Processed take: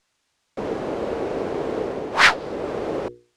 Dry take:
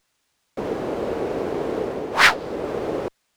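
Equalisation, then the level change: low-pass 9.1 kHz 12 dB/octave; hum notches 60/120/180/240/300/360/420/480 Hz; 0.0 dB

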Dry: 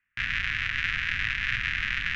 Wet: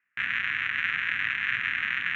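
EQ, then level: boxcar filter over 9 samples; Bessel high-pass 310 Hz, order 2; +3.5 dB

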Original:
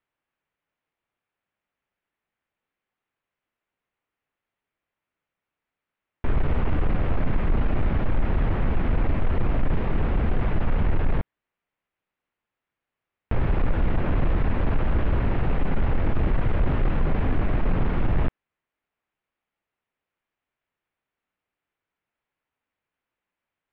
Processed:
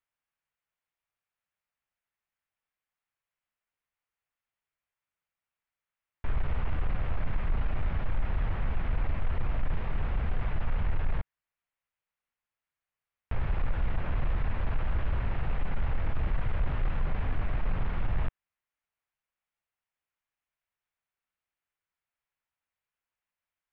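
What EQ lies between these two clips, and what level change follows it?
peaking EQ 300 Hz -10.5 dB 1.8 oct; -5.5 dB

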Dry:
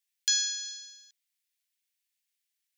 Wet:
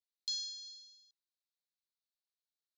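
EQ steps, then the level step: ladder band-pass 4.4 kHz, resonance 70%; -6.0 dB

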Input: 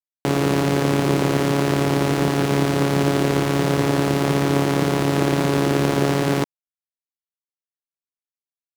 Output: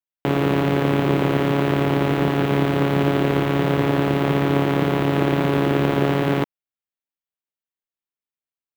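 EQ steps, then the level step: high-order bell 7.3 kHz -13 dB; 0.0 dB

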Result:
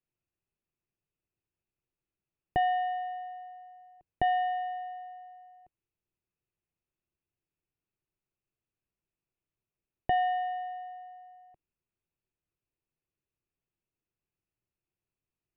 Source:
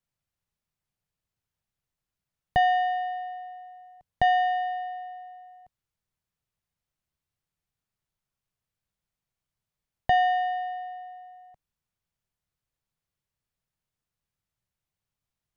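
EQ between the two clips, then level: distance through air 480 m; peaking EQ 350 Hz +12.5 dB 0.75 oct; peaking EQ 2.6 kHz +12.5 dB 0.3 oct; -5.0 dB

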